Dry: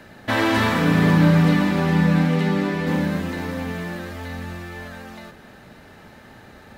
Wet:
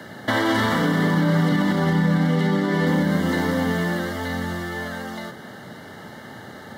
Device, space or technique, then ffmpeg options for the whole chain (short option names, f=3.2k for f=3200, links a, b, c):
PA system with an anti-feedback notch: -filter_complex "[0:a]asettb=1/sr,asplit=3[a][b][c];[a]atrim=end=0.824[d];[b]atrim=start=0.82:end=1.52,asetpts=PTS-STARTPTS,afade=t=in:d=0.004:c=qsin,afade=t=out:st=0.696:d=0.004:c=qsin,highpass=160[e];[c]atrim=start=1.516[f];[d][e]acrossfade=d=0.004:c1=hsin:c2=qsin[g];[g][f]acrossfade=d=0.004:c1=qsin:c2=hsin,highpass=f=100:w=0.5412,highpass=f=100:w=1.3066,asuperstop=centerf=2500:order=12:qfactor=5.1,alimiter=limit=-18dB:level=0:latency=1:release=143,volume=6.5dB"